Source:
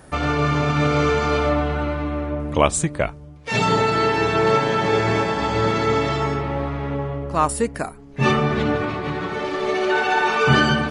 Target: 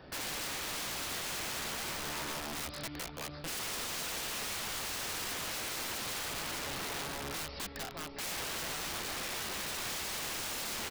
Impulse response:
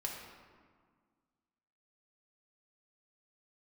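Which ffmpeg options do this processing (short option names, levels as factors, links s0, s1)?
-filter_complex "[0:a]bass=f=250:g=-4,treble=f=4000:g=-5,asplit=2[s0][s1];[s1]acrusher=samples=21:mix=1:aa=0.000001:lfo=1:lforange=21:lforate=0.32,volume=0.501[s2];[s0][s2]amix=inputs=2:normalize=0,aemphasis=mode=production:type=75kf,asplit=2[s3][s4];[s4]aecho=0:1:604|1208|1812|2416:0.2|0.0798|0.0319|0.0128[s5];[s3][s5]amix=inputs=2:normalize=0,asoftclip=type=tanh:threshold=0.596,aresample=11025,aresample=44100,acrossover=split=86|1500[s6][s7][s8];[s6]acompressor=threshold=0.00708:ratio=4[s9];[s7]acompressor=threshold=0.0447:ratio=4[s10];[s8]acompressor=threshold=0.0316:ratio=4[s11];[s9][s10][s11]amix=inputs=3:normalize=0,aeval=exprs='0.282*(cos(1*acos(clip(val(0)/0.282,-1,1)))-cos(1*PI/2))+0.00398*(cos(4*acos(clip(val(0)/0.282,-1,1)))-cos(4*PI/2))':c=same,aeval=exprs='(mod(18.8*val(0)+1,2)-1)/18.8':c=same,volume=0.398"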